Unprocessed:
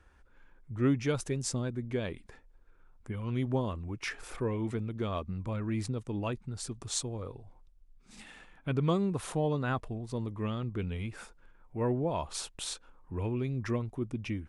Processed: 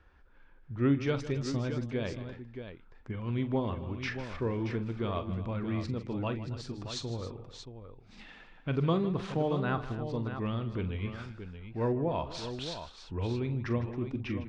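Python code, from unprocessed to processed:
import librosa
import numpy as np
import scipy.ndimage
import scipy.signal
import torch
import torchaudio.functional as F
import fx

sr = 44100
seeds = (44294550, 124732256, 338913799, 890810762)

y = scipy.signal.sosfilt(scipy.signal.butter(4, 4900.0, 'lowpass', fs=sr, output='sos'), x)
y = fx.echo_multitap(y, sr, ms=(43, 155, 271, 627), db=(-12.0, -14.5, -16.5, -9.5))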